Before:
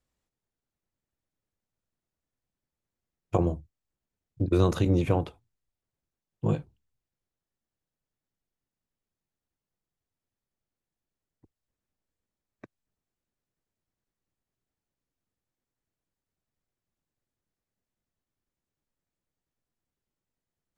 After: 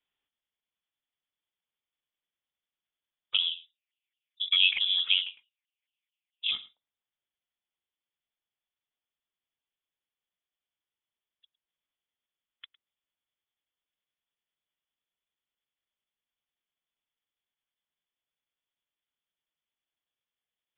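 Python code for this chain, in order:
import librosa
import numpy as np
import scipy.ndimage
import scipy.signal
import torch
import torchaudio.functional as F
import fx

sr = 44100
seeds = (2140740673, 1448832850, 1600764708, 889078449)

y = scipy.signal.sosfilt(scipy.signal.butter(2, 270.0, 'highpass', fs=sr, output='sos'), x)
y = y + 10.0 ** (-19.5 / 20.0) * np.pad(y, (int(107 * sr / 1000.0), 0))[:len(y)]
y = fx.filter_lfo_lowpass(y, sr, shape='saw_up', hz=4.6, low_hz=760.0, high_hz=1700.0, q=3.8, at=(3.5, 6.5), fade=0.02)
y = fx.freq_invert(y, sr, carrier_hz=3700)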